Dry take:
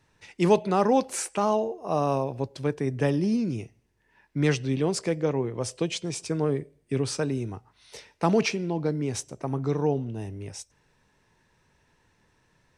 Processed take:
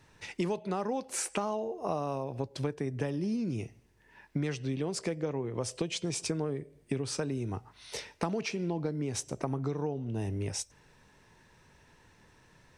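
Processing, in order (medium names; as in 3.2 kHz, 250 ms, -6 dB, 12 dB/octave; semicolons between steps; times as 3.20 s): compression 12:1, threshold -34 dBFS, peak gain reduction 20 dB; trim +5 dB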